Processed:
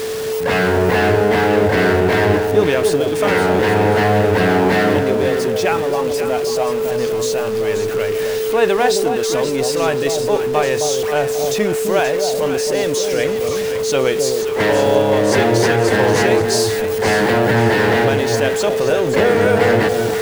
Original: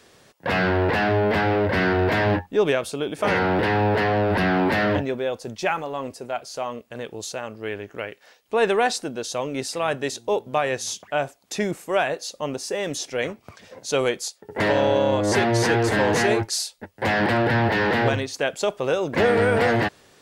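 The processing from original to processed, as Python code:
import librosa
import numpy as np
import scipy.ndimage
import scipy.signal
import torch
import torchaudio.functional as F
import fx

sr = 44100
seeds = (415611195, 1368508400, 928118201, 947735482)

y = x + 0.5 * 10.0 ** (-27.0 / 20.0) * np.sign(x)
y = y + 10.0 ** (-23.0 / 20.0) * np.sin(2.0 * np.pi * 440.0 * np.arange(len(y)) / sr)
y = fx.echo_alternate(y, sr, ms=265, hz=840.0, feedback_pct=58, wet_db=-4.5)
y = F.gain(torch.from_numpy(y), 2.5).numpy()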